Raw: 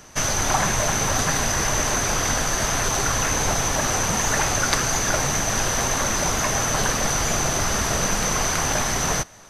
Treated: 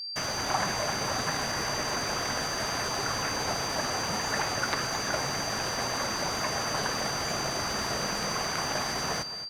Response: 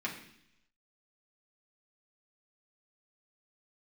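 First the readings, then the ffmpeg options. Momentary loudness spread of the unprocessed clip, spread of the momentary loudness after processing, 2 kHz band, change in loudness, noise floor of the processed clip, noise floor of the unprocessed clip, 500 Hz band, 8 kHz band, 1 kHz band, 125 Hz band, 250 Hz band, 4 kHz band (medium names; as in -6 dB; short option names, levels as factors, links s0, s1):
1 LU, 1 LU, -7.0 dB, -8.0 dB, -33 dBFS, -24 dBFS, -6.5 dB, -12.5 dB, -6.5 dB, -11.5 dB, -8.0 dB, -3.5 dB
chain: -filter_complex "[0:a]highpass=f=180:p=1,acrossover=split=2900[s0][s1];[s1]acompressor=threshold=0.0316:ratio=4:attack=1:release=60[s2];[s0][s2]amix=inputs=2:normalize=0,anlmdn=2.51,areverse,acompressor=mode=upward:threshold=0.0126:ratio=2.5,areverse,aeval=exprs='sgn(val(0))*max(abs(val(0))-0.00631,0)':c=same,aeval=exprs='val(0)+0.0355*sin(2*PI*4700*n/s)':c=same,asplit=2[s3][s4];[s4]aecho=0:1:221|442|663:0.224|0.0515|0.0118[s5];[s3][s5]amix=inputs=2:normalize=0,volume=0.531"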